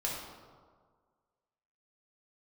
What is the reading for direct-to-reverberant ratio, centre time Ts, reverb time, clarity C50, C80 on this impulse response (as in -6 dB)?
-4.5 dB, 74 ms, 1.7 s, 0.5 dB, 3.5 dB